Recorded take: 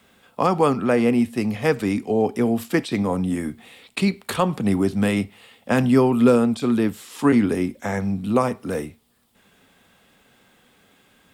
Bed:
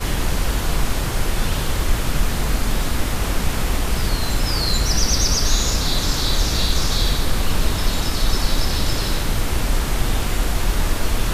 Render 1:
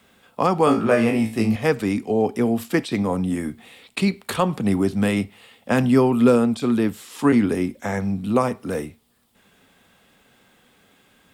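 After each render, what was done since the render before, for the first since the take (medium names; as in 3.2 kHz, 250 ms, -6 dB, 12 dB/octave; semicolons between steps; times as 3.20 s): 0.65–1.56 s: flutter echo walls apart 3.1 m, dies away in 0.3 s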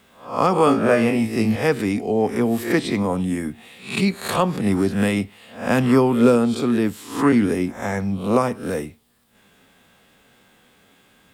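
reverse spectral sustain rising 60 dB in 0.43 s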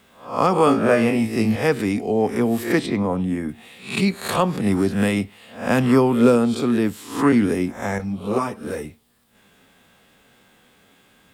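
2.86–3.49 s: peaking EQ 9.7 kHz -11 dB 2.4 oct; 7.98–8.85 s: three-phase chorus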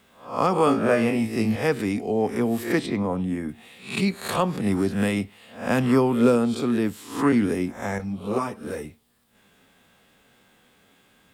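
trim -3.5 dB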